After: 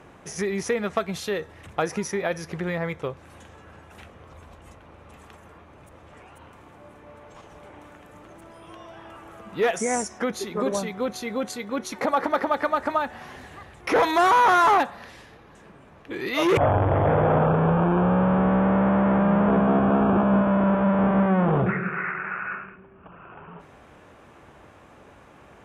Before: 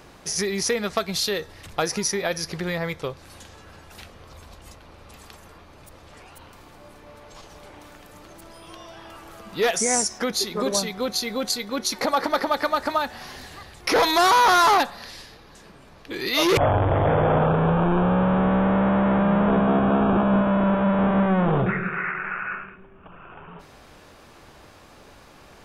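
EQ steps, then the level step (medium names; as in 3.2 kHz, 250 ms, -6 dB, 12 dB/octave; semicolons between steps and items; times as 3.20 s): high-pass 58 Hz; distance through air 51 m; peaking EQ 4.6 kHz -14 dB 0.79 oct; 0.0 dB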